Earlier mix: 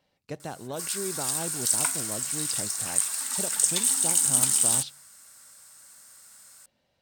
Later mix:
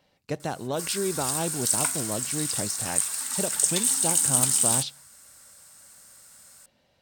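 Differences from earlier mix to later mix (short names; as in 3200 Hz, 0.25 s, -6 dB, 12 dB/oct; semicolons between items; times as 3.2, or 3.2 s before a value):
speech +6.0 dB; background: remove HPF 180 Hz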